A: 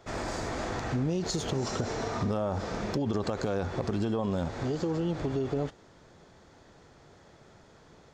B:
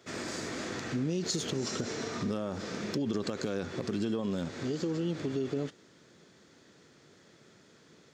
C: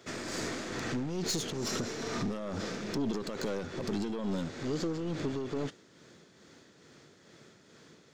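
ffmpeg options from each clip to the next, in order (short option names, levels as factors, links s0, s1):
-af "highpass=190,equalizer=f=800:w=1.1:g=-13,volume=1.26"
-af "aeval=exprs='(tanh(35.5*val(0)+0.35)-tanh(0.35))/35.5':c=same,tremolo=f=2.3:d=0.41,volume=1.68"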